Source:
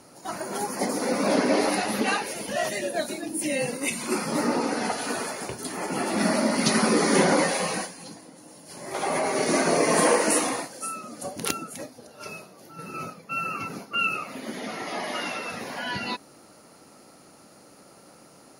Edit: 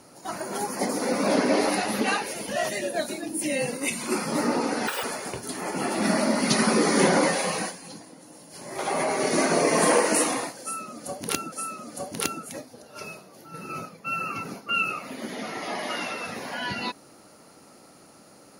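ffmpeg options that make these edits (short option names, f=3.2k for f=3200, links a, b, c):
-filter_complex "[0:a]asplit=4[a][b][c][d];[a]atrim=end=4.874[e];[b]atrim=start=4.87:end=5.19,asetpts=PTS-STARTPTS,asetrate=86436,aresample=44100[f];[c]atrim=start=5.186:end=11.682[g];[d]atrim=start=10.768[h];[e][f]acrossfade=d=0.004:c1=hsin:c2=hsin[i];[i][g]acrossfade=d=0.004:c1=hsin:c2=hsin[j];[j][h]acrossfade=d=0.004:c1=hsin:c2=hsin"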